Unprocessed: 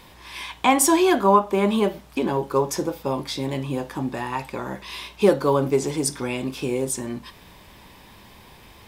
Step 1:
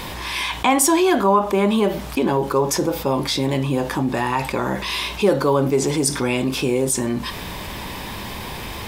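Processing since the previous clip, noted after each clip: fast leveller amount 50%; gain -1 dB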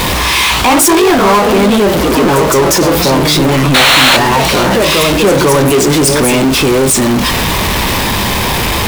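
echoes that change speed 0.102 s, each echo +2 st, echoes 2, each echo -6 dB; painted sound noise, 3.74–4.17, 500–4400 Hz -12 dBFS; power-law curve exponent 0.35; gain -1.5 dB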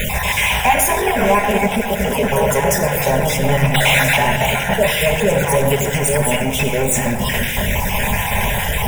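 random spectral dropouts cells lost 30%; fixed phaser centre 1200 Hz, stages 6; shoebox room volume 2600 m³, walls mixed, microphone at 1.3 m; gain -3 dB

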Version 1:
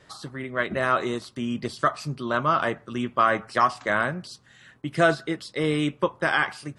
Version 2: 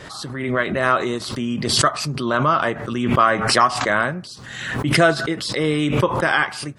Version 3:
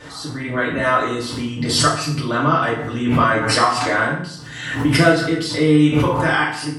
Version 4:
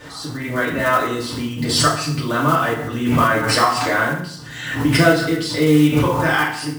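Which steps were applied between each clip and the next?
backwards sustainer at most 44 dB/s; gain +4 dB
FDN reverb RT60 0.6 s, low-frequency decay 1.2×, high-frequency decay 0.85×, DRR -5.5 dB; gain -5.5 dB
block floating point 5-bit

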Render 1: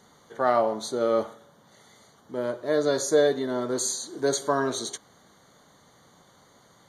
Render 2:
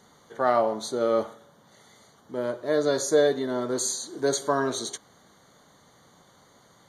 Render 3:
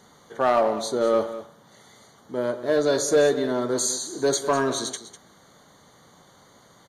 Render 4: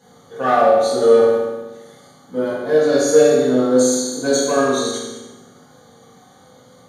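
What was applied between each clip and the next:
nothing audible
in parallel at -7.5 dB: wavefolder -18.5 dBFS; on the sum: echo 0.2 s -13.5 dB
bin magnitudes rounded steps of 15 dB; reverb RT60 1.1 s, pre-delay 3 ms, DRR -9.5 dB; gain -4.5 dB

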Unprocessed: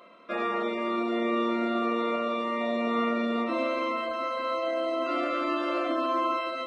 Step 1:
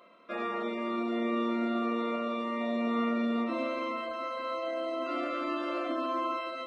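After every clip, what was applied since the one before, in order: dynamic EQ 240 Hz, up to +5 dB, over -42 dBFS, Q 3.7; gain -5 dB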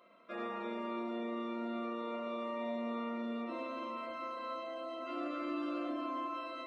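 compressor 2.5:1, threshold -33 dBFS, peak gain reduction 5.5 dB; spring tank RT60 1.7 s, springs 34/48 ms, chirp 70 ms, DRR 1.5 dB; gain -6.5 dB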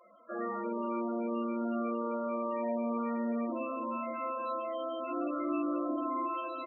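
echo 0.686 s -13.5 dB; loudest bins only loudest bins 16; gain +5.5 dB

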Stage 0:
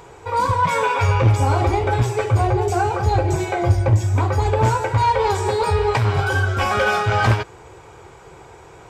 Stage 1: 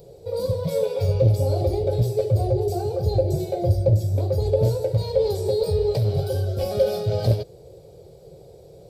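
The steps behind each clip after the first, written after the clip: EQ curve 100 Hz 0 dB, 170 Hz +7 dB, 260 Hz -7 dB, 570 Hz +9 dB, 960 Hz -23 dB, 1600 Hz -24 dB, 2800 Hz -15 dB, 4400 Hz +4 dB, 6800 Hz -10 dB, 12000 Hz +9 dB; gain -4 dB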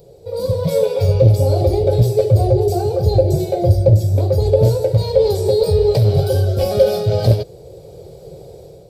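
AGC gain up to 8 dB; gain +1 dB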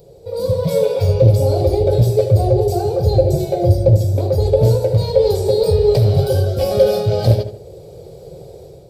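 darkening echo 77 ms, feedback 39%, low-pass 2700 Hz, level -9 dB

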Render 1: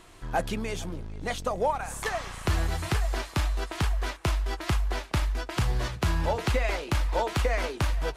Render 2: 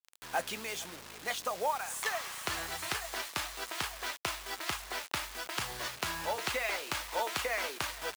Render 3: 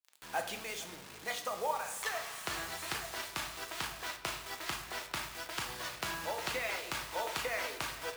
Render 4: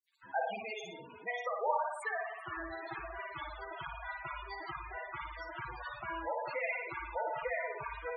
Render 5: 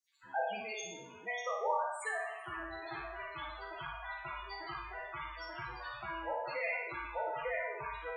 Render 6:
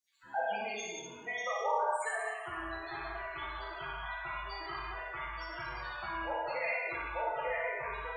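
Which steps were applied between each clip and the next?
bit-crush 7-bit; HPF 1200 Hz 6 dB/oct
shoebox room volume 280 m³, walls mixed, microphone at 0.63 m; gain -3.5 dB
on a send: flutter echo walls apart 9.9 m, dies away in 0.86 s; on the sum: loudest bins only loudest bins 16; gain +1 dB
spectral trails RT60 0.69 s; bell 6200 Hz +12.5 dB 0.72 oct; gain -3 dB
non-linear reverb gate 0.23 s flat, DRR 0 dB

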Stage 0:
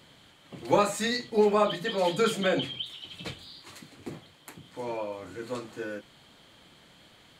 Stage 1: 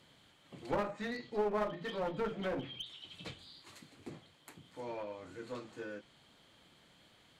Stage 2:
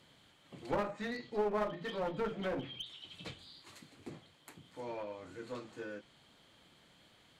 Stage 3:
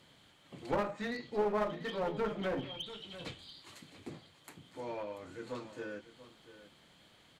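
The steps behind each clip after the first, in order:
treble ducked by the level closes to 1400 Hz, closed at -22.5 dBFS; one-sided clip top -29.5 dBFS; gain -8 dB
nothing audible
echo 0.687 s -15 dB; gain +1.5 dB

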